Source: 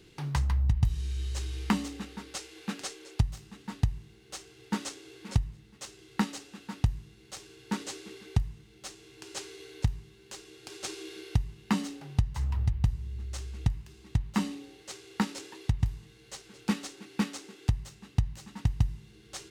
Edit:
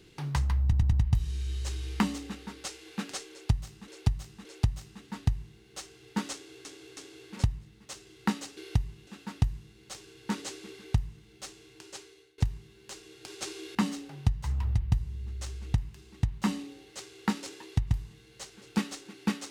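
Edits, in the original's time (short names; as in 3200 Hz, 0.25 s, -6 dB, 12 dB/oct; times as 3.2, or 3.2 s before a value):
0.63 stutter 0.10 s, 4 plays
3.01–3.58 loop, 3 plays
4.89–5.21 loop, 3 plays
8.97–9.8 fade out, to -24 dB
11.17–11.67 move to 6.49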